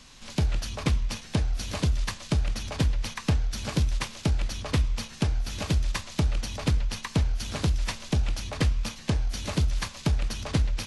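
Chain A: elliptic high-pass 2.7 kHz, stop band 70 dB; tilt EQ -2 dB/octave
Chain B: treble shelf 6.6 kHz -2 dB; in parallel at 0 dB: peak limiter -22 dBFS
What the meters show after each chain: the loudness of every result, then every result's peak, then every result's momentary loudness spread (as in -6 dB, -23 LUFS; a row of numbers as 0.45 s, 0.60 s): -43.0 LUFS, -25.0 LUFS; -24.5 dBFS, -10.5 dBFS; 3 LU, 2 LU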